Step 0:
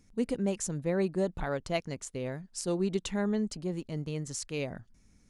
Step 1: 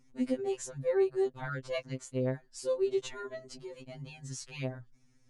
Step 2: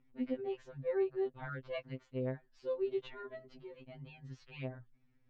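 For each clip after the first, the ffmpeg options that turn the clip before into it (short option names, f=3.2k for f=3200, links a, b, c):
-af "highshelf=f=9.2k:g=-11,afftfilt=real='re*2.45*eq(mod(b,6),0)':imag='im*2.45*eq(mod(b,6),0)':win_size=2048:overlap=0.75"
-af "lowpass=f=3.4k:w=0.5412,lowpass=f=3.4k:w=1.3066,volume=-5.5dB"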